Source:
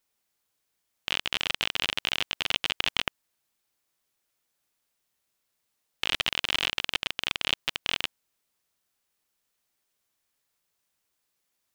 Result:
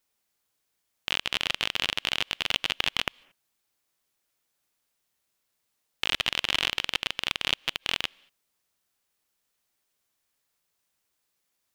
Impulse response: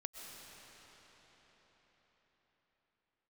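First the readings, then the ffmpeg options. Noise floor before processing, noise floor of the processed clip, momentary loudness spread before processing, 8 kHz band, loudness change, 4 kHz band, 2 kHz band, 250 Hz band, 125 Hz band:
-79 dBFS, -78 dBFS, 5 LU, +0.5 dB, +0.5 dB, +0.5 dB, +0.5 dB, +0.5 dB, +0.5 dB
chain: -filter_complex "[0:a]asplit=2[s0][s1];[1:a]atrim=start_sample=2205,afade=t=out:st=0.25:d=0.01,atrim=end_sample=11466,asetrate=37926,aresample=44100[s2];[s1][s2]afir=irnorm=-1:irlink=0,volume=0.119[s3];[s0][s3]amix=inputs=2:normalize=0"

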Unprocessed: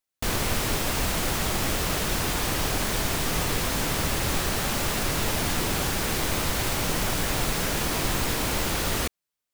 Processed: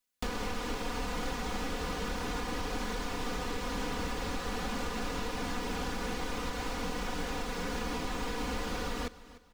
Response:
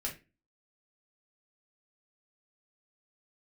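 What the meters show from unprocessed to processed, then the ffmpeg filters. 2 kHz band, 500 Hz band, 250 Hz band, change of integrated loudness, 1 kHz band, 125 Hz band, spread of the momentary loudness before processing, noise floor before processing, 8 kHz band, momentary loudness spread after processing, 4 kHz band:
-9.5 dB, -7.0 dB, -6.5 dB, -10.5 dB, -6.5 dB, -12.0 dB, 0 LU, under -85 dBFS, -16.5 dB, 1 LU, -11.5 dB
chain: -filter_complex "[0:a]acrossover=split=7000[s0][s1];[s1]acompressor=threshold=0.00447:ratio=4:attack=1:release=60[s2];[s0][s2]amix=inputs=2:normalize=0,equalizer=f=640:t=o:w=0.22:g=-11.5,aecho=1:1:4.1:0.86,alimiter=limit=0.168:level=0:latency=1:release=388,acrossover=split=330|1200[s3][s4][s5];[s3]acompressor=threshold=0.0158:ratio=4[s6];[s4]acompressor=threshold=0.0126:ratio=4[s7];[s5]acompressor=threshold=0.00631:ratio=4[s8];[s6][s7][s8]amix=inputs=3:normalize=0,aecho=1:1:299|598|897:0.133|0.0427|0.0137"

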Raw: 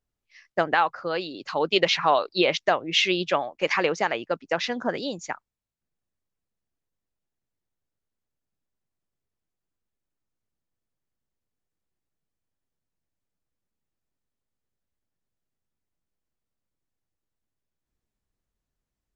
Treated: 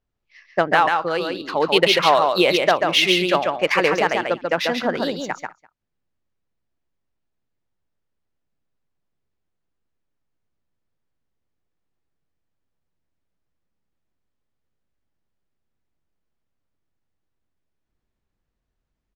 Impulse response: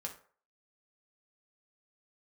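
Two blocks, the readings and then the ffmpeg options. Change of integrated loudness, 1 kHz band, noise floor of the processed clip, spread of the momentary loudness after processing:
+6.0 dB, +6.0 dB, -78 dBFS, 10 LU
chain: -filter_complex "[0:a]asplit=2[s0][s1];[s1]aecho=0:1:140:0.631[s2];[s0][s2]amix=inputs=2:normalize=0,adynamicsmooth=sensitivity=4.5:basefreq=4900,asplit=2[s3][s4];[s4]aecho=0:1:201:0.0668[s5];[s3][s5]amix=inputs=2:normalize=0,volume=1.68"

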